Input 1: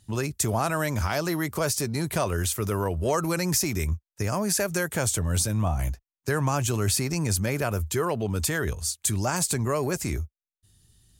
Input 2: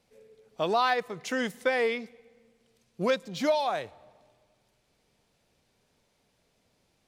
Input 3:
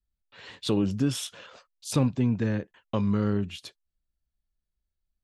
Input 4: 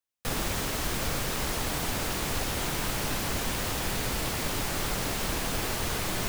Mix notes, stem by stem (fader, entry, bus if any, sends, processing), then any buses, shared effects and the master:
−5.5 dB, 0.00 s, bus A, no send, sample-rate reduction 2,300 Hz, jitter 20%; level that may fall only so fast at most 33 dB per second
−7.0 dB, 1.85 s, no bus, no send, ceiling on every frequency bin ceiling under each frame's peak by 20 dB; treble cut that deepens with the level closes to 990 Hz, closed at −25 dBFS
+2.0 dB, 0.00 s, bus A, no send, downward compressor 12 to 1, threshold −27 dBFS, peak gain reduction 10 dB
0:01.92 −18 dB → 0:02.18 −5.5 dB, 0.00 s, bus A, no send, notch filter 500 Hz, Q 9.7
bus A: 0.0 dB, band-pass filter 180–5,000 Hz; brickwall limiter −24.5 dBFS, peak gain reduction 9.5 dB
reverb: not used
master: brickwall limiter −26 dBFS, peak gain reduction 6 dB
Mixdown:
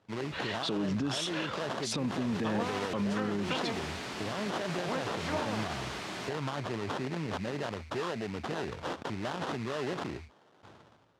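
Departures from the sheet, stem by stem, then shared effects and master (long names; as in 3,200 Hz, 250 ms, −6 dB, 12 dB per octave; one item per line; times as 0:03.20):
stem 3 +2.0 dB → +12.0 dB
master: missing brickwall limiter −26 dBFS, peak gain reduction 6 dB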